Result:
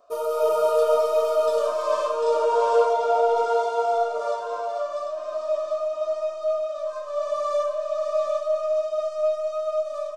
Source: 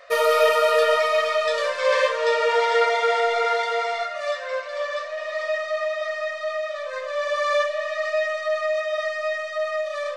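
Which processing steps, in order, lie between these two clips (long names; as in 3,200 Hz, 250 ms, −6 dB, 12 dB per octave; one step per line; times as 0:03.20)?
phaser with its sweep stopped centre 520 Hz, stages 6
automatic gain control gain up to 7 dB
octave-band graphic EQ 125/250/500/2,000/4,000 Hz +7/+11/+9/−6/−8 dB
single-tap delay 746 ms −5.5 dB
flanger 0.27 Hz, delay 9.2 ms, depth 7.2 ms, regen +80%
0:02.93–0:03.37: high-shelf EQ 8,900 Hz −10 dB
level −3.5 dB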